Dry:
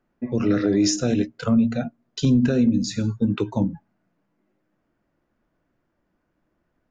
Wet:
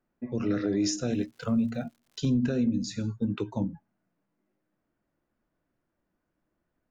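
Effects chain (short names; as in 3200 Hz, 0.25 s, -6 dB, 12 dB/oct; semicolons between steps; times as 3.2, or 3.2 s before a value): 1.11–2.26 crackle 200/s -43 dBFS; gain -7.5 dB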